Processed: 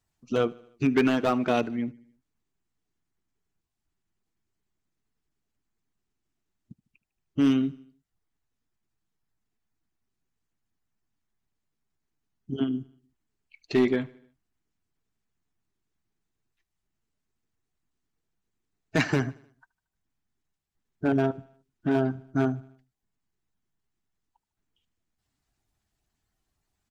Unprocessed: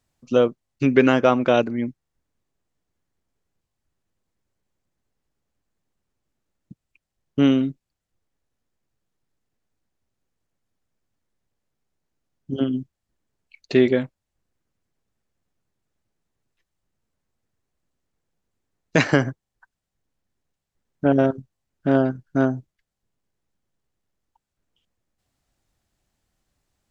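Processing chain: bin magnitudes rounded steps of 15 dB; hard clip -10.5 dBFS, distortion -17 dB; bell 540 Hz -7.5 dB 0.24 oct; notch 540 Hz, Q 12; on a send: feedback echo 76 ms, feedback 55%, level -23 dB; on the sum: gain -4 dB

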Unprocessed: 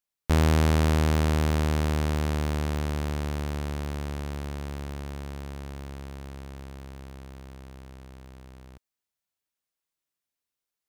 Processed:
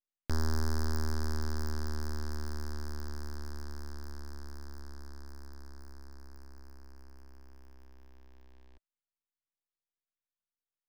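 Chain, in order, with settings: Wiener smoothing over 9 samples; thirty-one-band EQ 315 Hz +6 dB, 1000 Hz -9 dB, 1600 Hz +6 dB, 5000 Hz +10 dB; full-wave rectifier; gain -7 dB

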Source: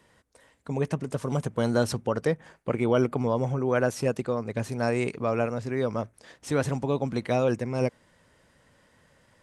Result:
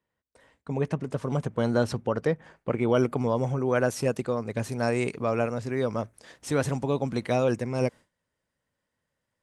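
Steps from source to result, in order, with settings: gate with hold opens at -48 dBFS; high shelf 6200 Hz -11 dB, from 2.89 s +3.5 dB

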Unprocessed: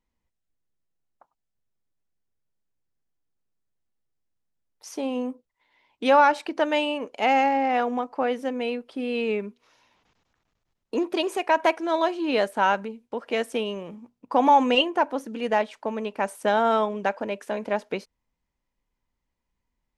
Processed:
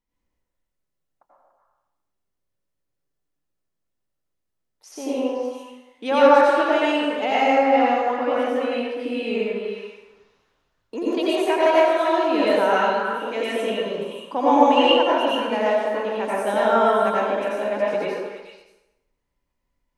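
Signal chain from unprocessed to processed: delay with a stepping band-pass 0.144 s, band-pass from 520 Hz, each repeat 1.4 oct, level -1 dB; plate-style reverb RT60 1 s, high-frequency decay 0.75×, pre-delay 75 ms, DRR -7 dB; gain -5 dB

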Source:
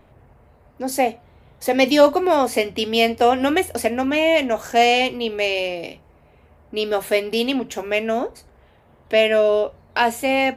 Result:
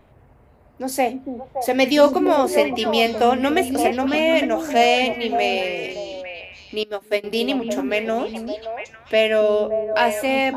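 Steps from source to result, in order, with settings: delay with a stepping band-pass 0.285 s, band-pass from 270 Hz, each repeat 1.4 oct, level -2 dB; 6.83–7.24 upward expander 2.5:1, over -27 dBFS; gain -1 dB

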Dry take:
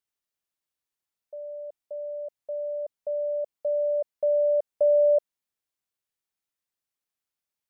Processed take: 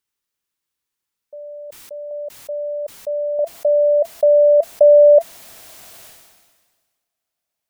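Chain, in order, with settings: bell 670 Hz -11 dB 0.26 oct, from 2.11 s -2.5 dB, from 3.39 s +11.5 dB; sustainer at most 38 dB/s; gain +7 dB

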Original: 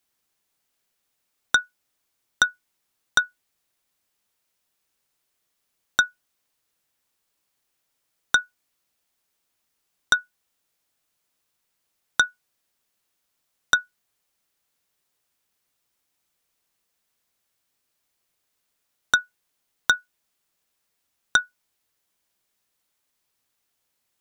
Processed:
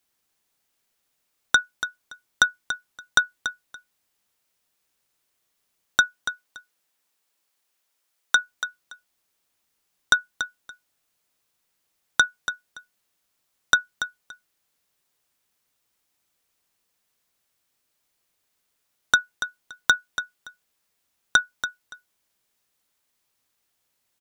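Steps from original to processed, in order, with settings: 6–8.39 HPF 160 Hz -> 650 Hz 6 dB/oct; feedback echo 0.285 s, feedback 18%, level -10.5 dB; gain +1 dB

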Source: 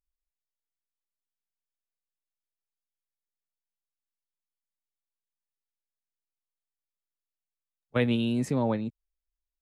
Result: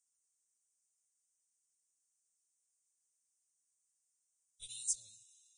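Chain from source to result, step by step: inverse Chebyshev band-stop 140–2000 Hz, stop band 60 dB; tone controls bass -6 dB, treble +13 dB; limiter -29 dBFS, peak gain reduction 10 dB; time stretch by phase-locked vocoder 0.58×; reverb RT60 5.3 s, pre-delay 5 ms, DRR 16 dB; gain +8 dB; Vorbis 16 kbps 22050 Hz

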